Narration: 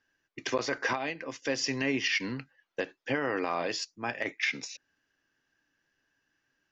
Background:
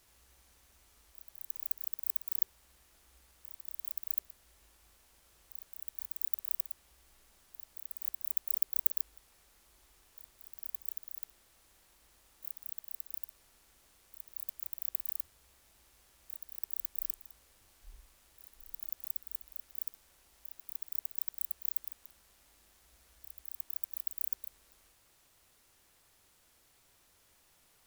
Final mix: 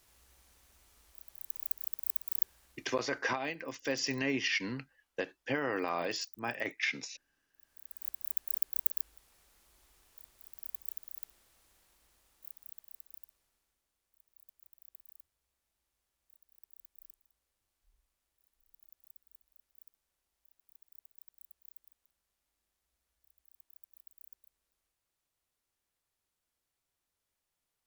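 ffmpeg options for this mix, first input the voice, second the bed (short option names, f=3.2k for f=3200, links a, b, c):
-filter_complex "[0:a]adelay=2400,volume=-3dB[a];[1:a]volume=18dB,afade=t=out:st=2.57:d=0.68:silence=0.105925,afade=t=in:st=7.55:d=0.58:silence=0.125893,afade=t=out:st=11.29:d=2.54:silence=0.125893[b];[a][b]amix=inputs=2:normalize=0"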